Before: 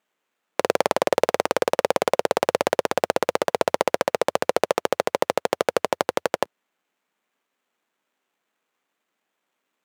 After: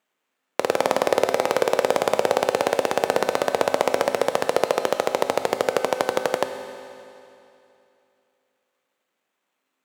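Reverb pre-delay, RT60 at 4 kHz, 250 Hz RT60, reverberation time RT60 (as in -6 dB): 4 ms, 2.7 s, 2.8 s, 2.8 s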